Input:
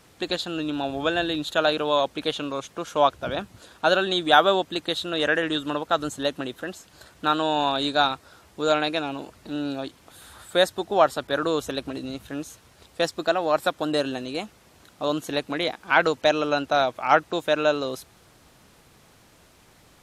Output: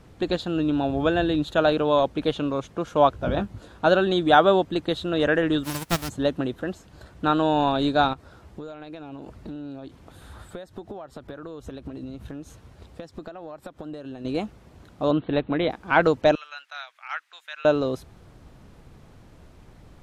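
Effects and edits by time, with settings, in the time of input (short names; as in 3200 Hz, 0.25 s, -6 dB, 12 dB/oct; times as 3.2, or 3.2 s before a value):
3.11–3.87 doubler 20 ms -7.5 dB
5.63–6.08 spectral whitening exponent 0.1
8.13–14.25 compressor 10:1, threshold -37 dBFS
15.11–15.7 steep low-pass 4000 Hz 96 dB/oct
16.35–17.65 ladder high-pass 1400 Hz, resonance 30%
whole clip: tilt -3 dB/oct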